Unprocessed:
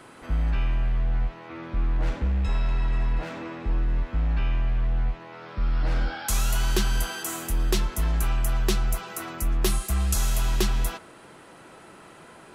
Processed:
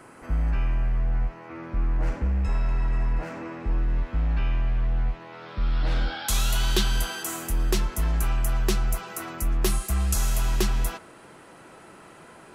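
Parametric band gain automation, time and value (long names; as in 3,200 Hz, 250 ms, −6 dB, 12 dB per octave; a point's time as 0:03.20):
parametric band 3,600 Hz 0.57 octaves
0:03.38 −11.5 dB
0:04.03 −2 dB
0:05.09 −2 dB
0:05.74 +7.5 dB
0:06.83 +7.5 dB
0:07.40 −3 dB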